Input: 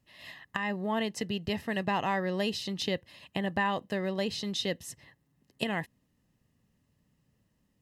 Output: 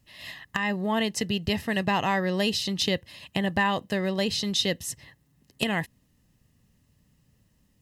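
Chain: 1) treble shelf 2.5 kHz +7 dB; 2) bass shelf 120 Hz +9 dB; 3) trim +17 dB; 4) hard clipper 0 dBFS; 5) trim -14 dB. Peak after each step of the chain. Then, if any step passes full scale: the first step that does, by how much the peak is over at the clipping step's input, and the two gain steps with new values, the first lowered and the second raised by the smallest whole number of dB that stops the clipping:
-11.0 dBFS, -9.5 dBFS, +7.5 dBFS, 0.0 dBFS, -14.0 dBFS; step 3, 7.5 dB; step 3 +9 dB, step 5 -6 dB

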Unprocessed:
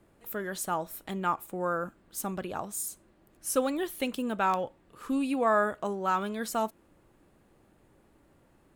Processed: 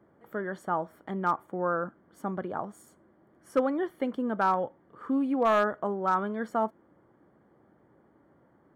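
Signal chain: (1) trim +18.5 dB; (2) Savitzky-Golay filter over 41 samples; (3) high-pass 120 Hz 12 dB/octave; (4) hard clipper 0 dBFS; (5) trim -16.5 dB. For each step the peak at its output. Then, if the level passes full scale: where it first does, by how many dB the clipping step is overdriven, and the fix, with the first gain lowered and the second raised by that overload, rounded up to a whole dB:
+5.0 dBFS, +4.5 dBFS, +5.0 dBFS, 0.0 dBFS, -16.5 dBFS; step 1, 5.0 dB; step 1 +13.5 dB, step 5 -11.5 dB

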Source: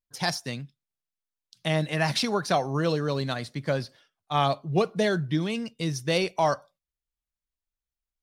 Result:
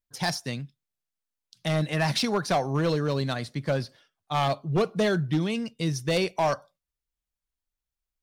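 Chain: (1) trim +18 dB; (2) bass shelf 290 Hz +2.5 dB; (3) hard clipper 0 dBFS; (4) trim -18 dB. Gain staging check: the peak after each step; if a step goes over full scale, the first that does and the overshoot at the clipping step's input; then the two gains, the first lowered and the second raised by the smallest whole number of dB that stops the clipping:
+7.0 dBFS, +8.0 dBFS, 0.0 dBFS, -18.0 dBFS; step 1, 8.0 dB; step 1 +10 dB, step 4 -10 dB

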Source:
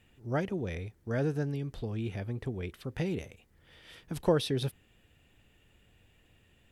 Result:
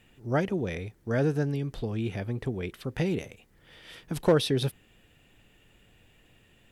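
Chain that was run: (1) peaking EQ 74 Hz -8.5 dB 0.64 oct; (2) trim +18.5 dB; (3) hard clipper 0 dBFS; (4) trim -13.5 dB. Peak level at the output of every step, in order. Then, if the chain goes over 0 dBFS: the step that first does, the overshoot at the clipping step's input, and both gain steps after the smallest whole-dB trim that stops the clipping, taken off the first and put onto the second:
-14.5 dBFS, +4.0 dBFS, 0.0 dBFS, -13.5 dBFS; step 2, 4.0 dB; step 2 +14.5 dB, step 4 -9.5 dB

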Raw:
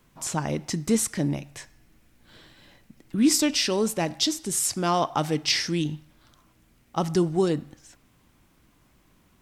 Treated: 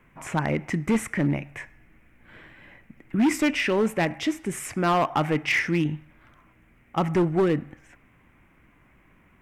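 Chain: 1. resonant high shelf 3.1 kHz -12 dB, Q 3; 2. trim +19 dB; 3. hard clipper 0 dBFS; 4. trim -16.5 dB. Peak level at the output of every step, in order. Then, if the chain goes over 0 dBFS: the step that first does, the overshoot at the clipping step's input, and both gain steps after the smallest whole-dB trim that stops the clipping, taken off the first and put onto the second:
-10.0 dBFS, +9.0 dBFS, 0.0 dBFS, -16.5 dBFS; step 2, 9.0 dB; step 2 +10 dB, step 4 -7.5 dB

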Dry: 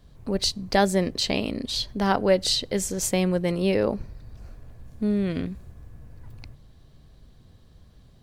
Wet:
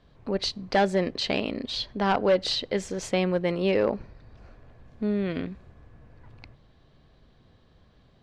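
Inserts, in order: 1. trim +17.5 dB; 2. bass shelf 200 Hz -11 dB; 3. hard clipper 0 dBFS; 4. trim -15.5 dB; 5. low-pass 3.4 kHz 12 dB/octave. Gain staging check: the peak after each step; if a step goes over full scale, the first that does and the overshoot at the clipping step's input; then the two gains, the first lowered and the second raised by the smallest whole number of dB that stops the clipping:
+10.0 dBFS, +9.0 dBFS, 0.0 dBFS, -15.5 dBFS, -15.0 dBFS; step 1, 9.0 dB; step 1 +8.5 dB, step 4 -6.5 dB

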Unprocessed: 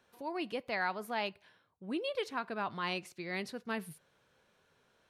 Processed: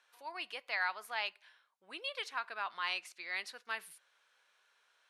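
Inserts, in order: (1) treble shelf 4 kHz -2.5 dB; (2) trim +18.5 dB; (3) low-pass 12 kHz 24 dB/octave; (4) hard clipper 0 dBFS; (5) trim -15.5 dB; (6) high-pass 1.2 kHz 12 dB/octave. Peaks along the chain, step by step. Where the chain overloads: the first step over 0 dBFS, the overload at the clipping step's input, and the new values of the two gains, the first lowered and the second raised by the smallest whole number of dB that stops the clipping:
-21.5 dBFS, -3.0 dBFS, -3.0 dBFS, -3.0 dBFS, -18.5 dBFS, -21.0 dBFS; nothing clips

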